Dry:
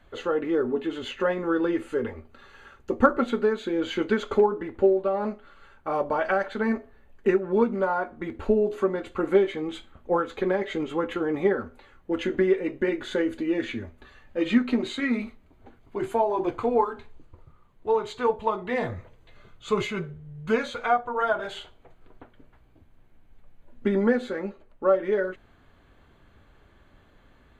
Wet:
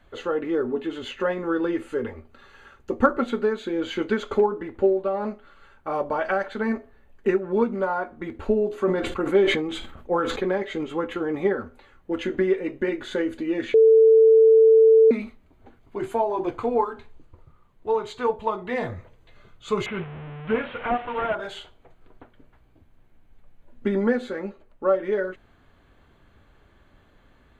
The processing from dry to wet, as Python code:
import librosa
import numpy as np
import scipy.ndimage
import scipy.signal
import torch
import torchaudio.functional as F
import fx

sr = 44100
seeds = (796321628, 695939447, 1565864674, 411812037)

y = fx.sustainer(x, sr, db_per_s=46.0, at=(8.81, 10.58))
y = fx.delta_mod(y, sr, bps=16000, step_db=-31.0, at=(19.86, 21.35))
y = fx.edit(y, sr, fx.bleep(start_s=13.74, length_s=1.37, hz=445.0, db=-10.5), tone=tone)